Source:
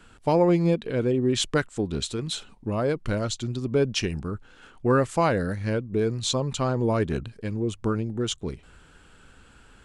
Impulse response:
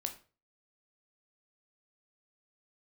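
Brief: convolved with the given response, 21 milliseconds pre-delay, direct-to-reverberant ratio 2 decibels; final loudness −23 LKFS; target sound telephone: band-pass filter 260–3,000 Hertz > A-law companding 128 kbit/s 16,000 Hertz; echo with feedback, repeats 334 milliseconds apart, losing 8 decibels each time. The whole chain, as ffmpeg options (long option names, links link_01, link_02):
-filter_complex "[0:a]aecho=1:1:334|668|1002|1336|1670:0.398|0.159|0.0637|0.0255|0.0102,asplit=2[link_01][link_02];[1:a]atrim=start_sample=2205,adelay=21[link_03];[link_02][link_03]afir=irnorm=-1:irlink=0,volume=-2dB[link_04];[link_01][link_04]amix=inputs=2:normalize=0,highpass=260,lowpass=3000,volume=2.5dB" -ar 16000 -c:a pcm_alaw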